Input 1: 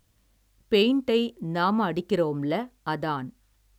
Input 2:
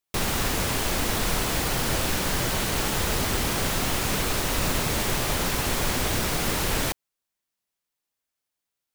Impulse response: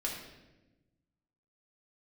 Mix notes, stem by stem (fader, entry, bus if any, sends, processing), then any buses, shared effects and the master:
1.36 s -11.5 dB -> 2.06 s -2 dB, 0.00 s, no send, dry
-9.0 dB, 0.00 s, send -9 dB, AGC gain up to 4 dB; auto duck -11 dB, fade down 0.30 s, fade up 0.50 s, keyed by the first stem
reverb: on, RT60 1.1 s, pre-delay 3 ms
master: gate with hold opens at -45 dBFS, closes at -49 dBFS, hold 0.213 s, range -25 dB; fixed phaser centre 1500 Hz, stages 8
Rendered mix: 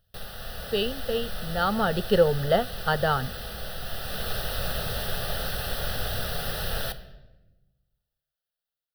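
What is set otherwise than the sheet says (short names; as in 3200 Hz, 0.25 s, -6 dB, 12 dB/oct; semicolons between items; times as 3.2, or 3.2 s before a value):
stem 1 -11.5 dB -> -1.5 dB; master: missing gate with hold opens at -45 dBFS, closes at -49 dBFS, hold 0.213 s, range -25 dB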